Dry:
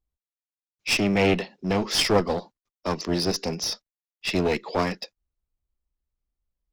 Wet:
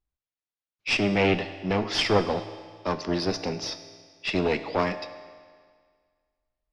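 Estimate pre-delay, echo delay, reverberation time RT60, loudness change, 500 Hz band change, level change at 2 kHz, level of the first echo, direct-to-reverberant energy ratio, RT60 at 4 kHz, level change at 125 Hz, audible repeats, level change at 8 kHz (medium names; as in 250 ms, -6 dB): 4 ms, no echo, 1.8 s, -1.5 dB, -1.0 dB, 0.0 dB, no echo, 10.0 dB, 1.7 s, -1.5 dB, no echo, -8.5 dB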